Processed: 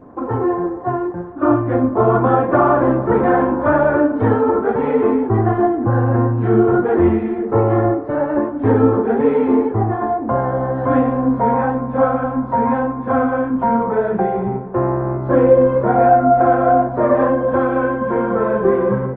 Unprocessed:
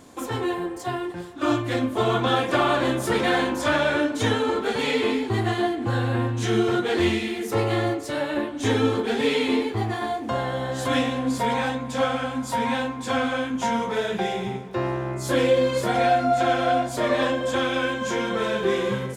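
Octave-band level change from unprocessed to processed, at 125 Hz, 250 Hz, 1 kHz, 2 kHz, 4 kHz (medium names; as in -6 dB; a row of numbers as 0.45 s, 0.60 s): +8.5 dB, +8.5 dB, +8.0 dB, -0.5 dB, under -20 dB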